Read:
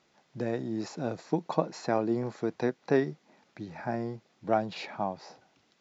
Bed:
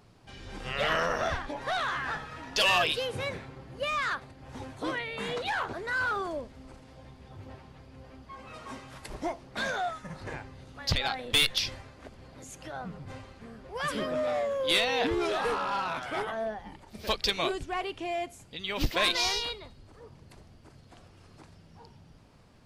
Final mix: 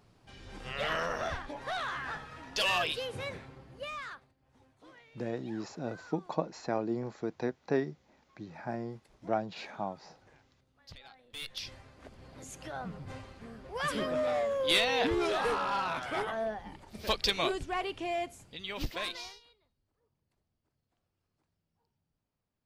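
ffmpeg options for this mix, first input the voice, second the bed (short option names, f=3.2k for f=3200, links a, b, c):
-filter_complex "[0:a]adelay=4800,volume=-4.5dB[a];[1:a]volume=17.5dB,afade=t=out:st=3.51:d=0.85:silence=0.11885,afade=t=in:st=11.33:d=1.09:silence=0.0749894,afade=t=out:st=18.19:d=1.21:silence=0.0421697[b];[a][b]amix=inputs=2:normalize=0"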